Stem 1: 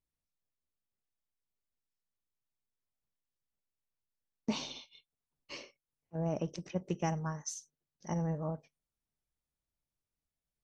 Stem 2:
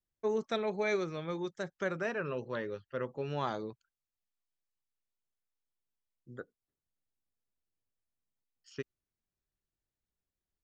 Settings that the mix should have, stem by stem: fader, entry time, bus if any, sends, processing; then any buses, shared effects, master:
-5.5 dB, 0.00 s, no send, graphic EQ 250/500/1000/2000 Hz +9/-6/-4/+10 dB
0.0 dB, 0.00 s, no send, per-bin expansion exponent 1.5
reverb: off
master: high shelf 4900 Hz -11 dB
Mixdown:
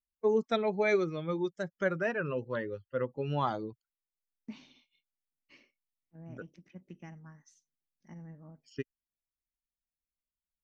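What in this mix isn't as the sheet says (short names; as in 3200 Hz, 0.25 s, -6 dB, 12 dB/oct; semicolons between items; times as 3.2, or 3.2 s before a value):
stem 1 -5.5 dB -> -16.5 dB; stem 2 0.0 dB -> +6.5 dB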